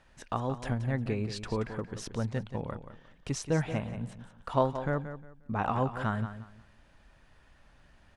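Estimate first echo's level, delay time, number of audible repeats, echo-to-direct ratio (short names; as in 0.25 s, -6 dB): -11.0 dB, 0.178 s, 2, -10.5 dB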